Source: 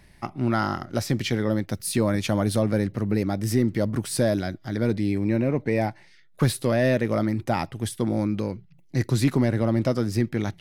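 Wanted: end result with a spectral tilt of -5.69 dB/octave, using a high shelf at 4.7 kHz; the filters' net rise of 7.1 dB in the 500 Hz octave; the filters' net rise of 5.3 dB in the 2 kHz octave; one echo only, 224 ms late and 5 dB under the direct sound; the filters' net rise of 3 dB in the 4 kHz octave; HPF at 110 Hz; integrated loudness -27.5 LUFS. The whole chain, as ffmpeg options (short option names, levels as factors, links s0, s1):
-af "highpass=110,equalizer=f=500:t=o:g=8.5,equalizer=f=2000:t=o:g=6,equalizer=f=4000:t=o:g=6.5,highshelf=f=4700:g=-9,aecho=1:1:224:0.562,volume=0.447"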